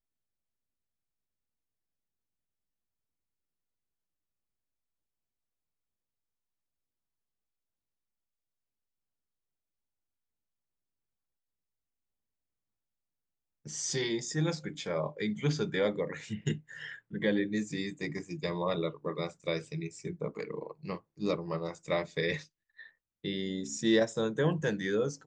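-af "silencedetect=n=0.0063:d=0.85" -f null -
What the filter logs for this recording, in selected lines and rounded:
silence_start: 0.00
silence_end: 13.66 | silence_duration: 13.66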